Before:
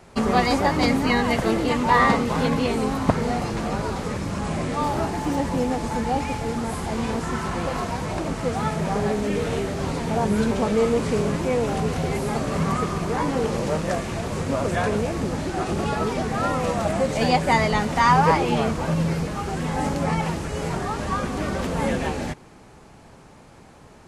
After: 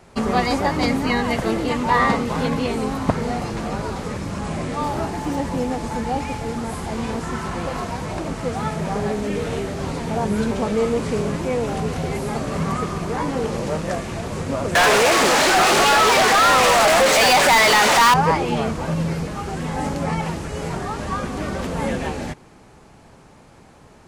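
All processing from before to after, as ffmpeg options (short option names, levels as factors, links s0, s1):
-filter_complex "[0:a]asettb=1/sr,asplit=3[s0][s1][s2];[s0]atrim=end=14.754[s3];[s1]atrim=start=14.75:end=18.14,asetpts=PTS-STARTPTS,afade=t=in:d=0.004:c=qsin,afade=t=out:st=3.386:d=0.004:c=qsin,highpass=f=760:p=1,asplit=2[s4][s5];[s5]highpass=f=720:p=1,volume=56.2,asoftclip=type=tanh:threshold=0.422[s6];[s4][s6]amix=inputs=2:normalize=0,lowpass=f=6800:p=1,volume=0.501[s7];[s2]atrim=start=18.136[s8];[s3][s7]acrossfade=d=0.004:c1=hsin:c2=qsin[s9];[s9][s8]acrossfade=d=0.004:c1=qsin:c2=hsin"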